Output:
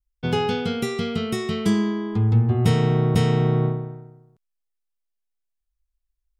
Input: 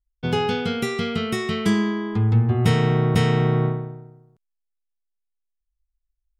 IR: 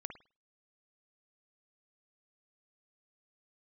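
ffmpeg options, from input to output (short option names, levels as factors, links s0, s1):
-af "adynamicequalizer=threshold=0.00794:dfrequency=1800:dqfactor=0.89:tfrequency=1800:tqfactor=0.89:attack=5:release=100:ratio=0.375:range=3:mode=cutabove:tftype=bell"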